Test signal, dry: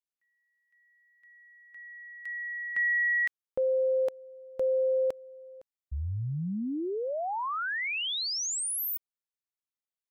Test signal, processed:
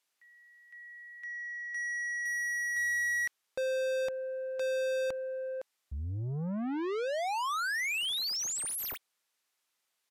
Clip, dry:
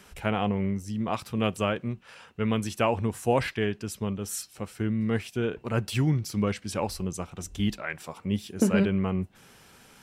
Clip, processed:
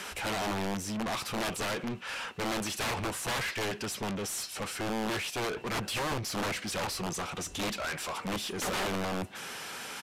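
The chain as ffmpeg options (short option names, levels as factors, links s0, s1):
-filter_complex "[0:a]aeval=exprs='(mod(12.6*val(0)+1,2)-1)/12.6':c=same,asplit=2[s0][s1];[s1]highpass=f=720:p=1,volume=31.6,asoftclip=type=tanh:threshold=0.0794[s2];[s0][s2]amix=inputs=2:normalize=0,lowpass=f=7300:p=1,volume=0.501,aresample=32000,aresample=44100,volume=0.501"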